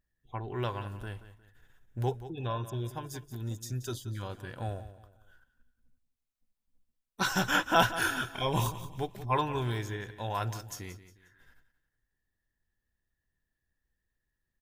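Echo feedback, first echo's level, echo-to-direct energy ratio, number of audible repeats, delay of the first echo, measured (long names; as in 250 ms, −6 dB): 35%, −14.0 dB, −13.5 dB, 3, 179 ms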